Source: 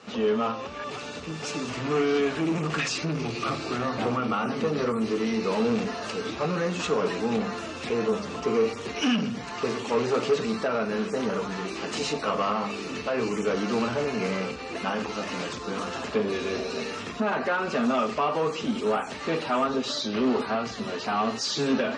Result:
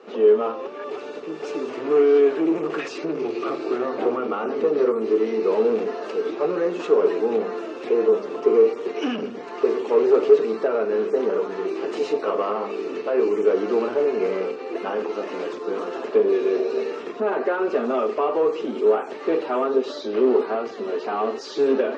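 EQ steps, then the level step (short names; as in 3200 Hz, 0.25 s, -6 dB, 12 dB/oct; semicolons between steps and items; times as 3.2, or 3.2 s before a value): resonant high-pass 380 Hz, resonance Q 3.8; LPF 1600 Hz 6 dB/oct; 0.0 dB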